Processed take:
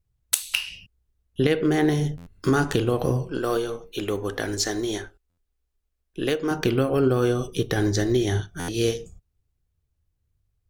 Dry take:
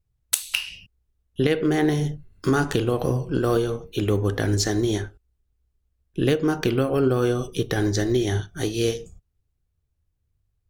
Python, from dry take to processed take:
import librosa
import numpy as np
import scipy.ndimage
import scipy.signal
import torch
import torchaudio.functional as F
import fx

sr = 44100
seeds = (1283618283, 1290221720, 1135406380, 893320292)

y = fx.peak_eq(x, sr, hz=97.0, db=-12.5, octaves=2.7, at=(3.27, 6.51))
y = fx.buffer_glitch(y, sr, at_s=(2.17, 5.29, 8.59), block=512, repeats=7)